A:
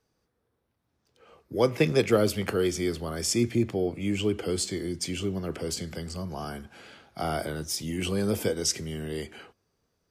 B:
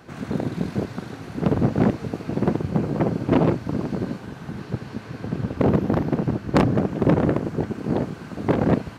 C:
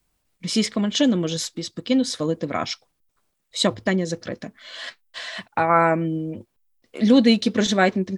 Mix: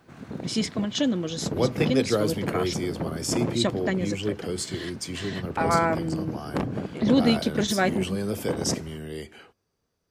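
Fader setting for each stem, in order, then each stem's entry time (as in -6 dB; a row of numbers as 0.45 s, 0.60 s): -2.0 dB, -10.0 dB, -5.5 dB; 0.00 s, 0.00 s, 0.00 s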